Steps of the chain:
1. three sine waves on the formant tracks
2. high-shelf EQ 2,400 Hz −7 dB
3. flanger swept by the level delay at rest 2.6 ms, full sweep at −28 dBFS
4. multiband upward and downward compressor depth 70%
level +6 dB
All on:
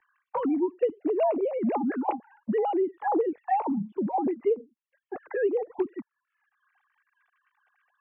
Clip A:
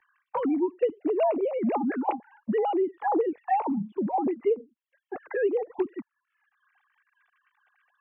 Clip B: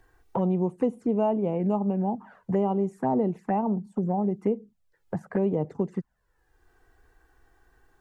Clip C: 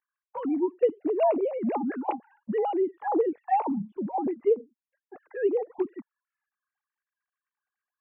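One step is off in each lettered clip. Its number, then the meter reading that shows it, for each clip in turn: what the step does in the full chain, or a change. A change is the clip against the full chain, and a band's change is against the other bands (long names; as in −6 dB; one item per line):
2, 2 kHz band +1.5 dB
1, 125 Hz band +17.0 dB
4, change in crest factor +2.0 dB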